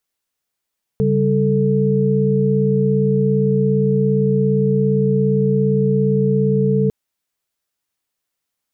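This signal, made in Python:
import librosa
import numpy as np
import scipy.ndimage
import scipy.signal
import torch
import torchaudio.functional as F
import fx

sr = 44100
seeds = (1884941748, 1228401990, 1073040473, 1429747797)

y = fx.chord(sr, length_s=5.9, notes=(49, 55, 69), wave='sine', level_db=-17.5)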